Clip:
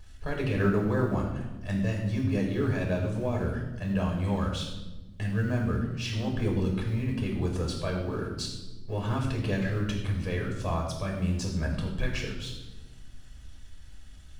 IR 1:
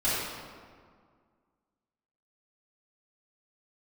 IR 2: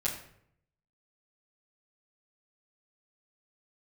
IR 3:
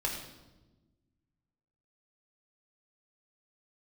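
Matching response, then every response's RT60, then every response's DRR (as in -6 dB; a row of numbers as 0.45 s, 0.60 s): 3; 1.9 s, 0.65 s, 1.1 s; -13.0 dB, -8.5 dB, -1.0 dB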